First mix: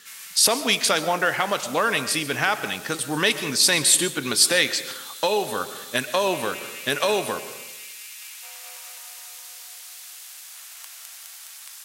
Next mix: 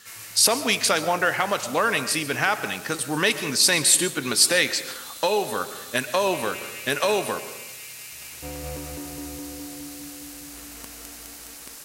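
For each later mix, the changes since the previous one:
background: remove Bessel high-pass 1200 Hz, order 8; master: add bell 3400 Hz -5 dB 0.22 oct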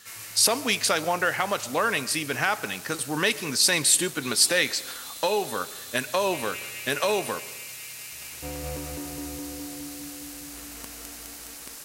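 speech: send -8.5 dB

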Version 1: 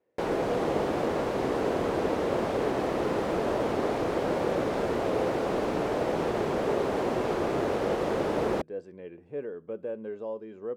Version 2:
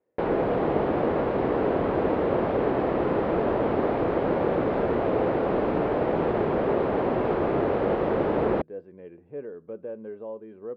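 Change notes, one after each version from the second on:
background +5.0 dB; master: add air absorption 450 m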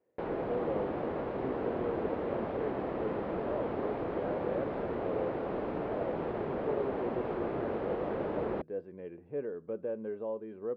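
background -10.5 dB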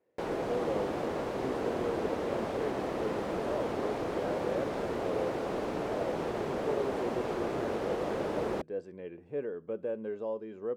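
master: remove air absorption 450 m

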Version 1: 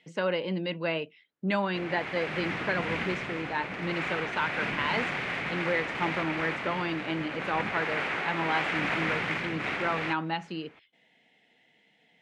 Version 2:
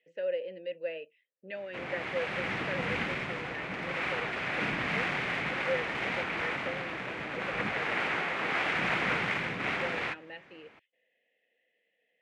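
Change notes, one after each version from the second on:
speech: add vowel filter e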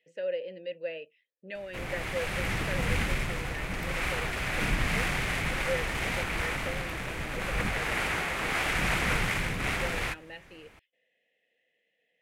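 master: remove BPF 190–3300 Hz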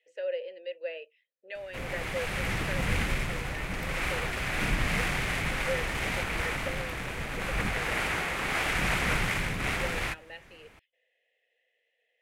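speech: add HPF 420 Hz 24 dB/oct

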